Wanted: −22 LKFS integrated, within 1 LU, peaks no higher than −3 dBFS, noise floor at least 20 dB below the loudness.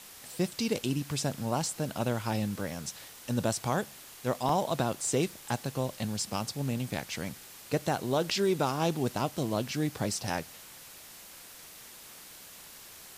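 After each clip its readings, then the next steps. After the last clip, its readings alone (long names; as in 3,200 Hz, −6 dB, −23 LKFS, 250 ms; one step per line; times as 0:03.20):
number of dropouts 1; longest dropout 2.4 ms; background noise floor −50 dBFS; target noise floor −52 dBFS; integrated loudness −32.0 LKFS; sample peak −16.5 dBFS; target loudness −22.0 LKFS
→ repair the gap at 0:04.49, 2.4 ms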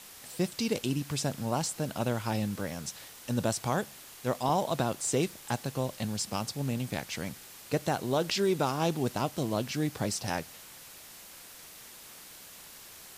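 number of dropouts 0; background noise floor −50 dBFS; target noise floor −52 dBFS
→ broadband denoise 6 dB, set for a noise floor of −50 dBFS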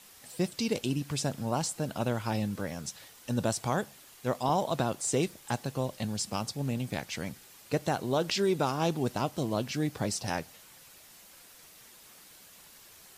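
background noise floor −55 dBFS; integrated loudness −32.0 LKFS; sample peak −16.5 dBFS; target loudness −22.0 LKFS
→ level +10 dB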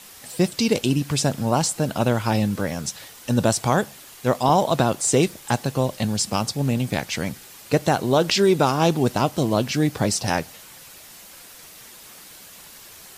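integrated loudness −22.0 LKFS; sample peak −6.5 dBFS; background noise floor −45 dBFS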